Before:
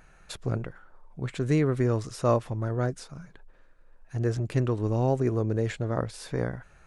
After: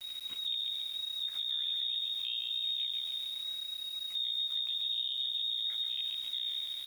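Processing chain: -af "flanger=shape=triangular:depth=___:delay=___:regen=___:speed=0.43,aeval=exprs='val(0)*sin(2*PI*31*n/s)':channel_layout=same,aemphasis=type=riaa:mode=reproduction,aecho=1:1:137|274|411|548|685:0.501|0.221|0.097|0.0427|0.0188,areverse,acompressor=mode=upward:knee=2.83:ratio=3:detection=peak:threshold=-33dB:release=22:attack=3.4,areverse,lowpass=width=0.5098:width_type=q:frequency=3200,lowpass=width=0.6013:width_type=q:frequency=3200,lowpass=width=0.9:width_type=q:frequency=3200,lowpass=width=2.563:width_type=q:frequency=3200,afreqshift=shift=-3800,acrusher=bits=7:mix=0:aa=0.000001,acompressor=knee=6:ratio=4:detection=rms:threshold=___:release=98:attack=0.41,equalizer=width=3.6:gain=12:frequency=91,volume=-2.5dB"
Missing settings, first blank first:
1, 6.9, -78, -29dB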